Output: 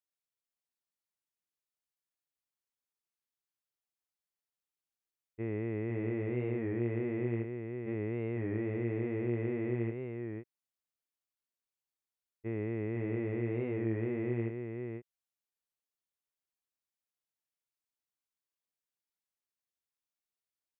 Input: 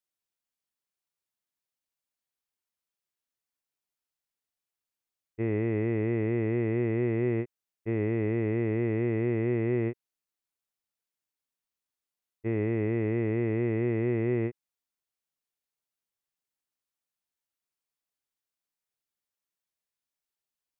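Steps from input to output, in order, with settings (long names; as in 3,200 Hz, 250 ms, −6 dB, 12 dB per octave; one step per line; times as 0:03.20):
single-tap delay 504 ms −5 dB
wow of a warped record 33 1/3 rpm, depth 100 cents
level −7.5 dB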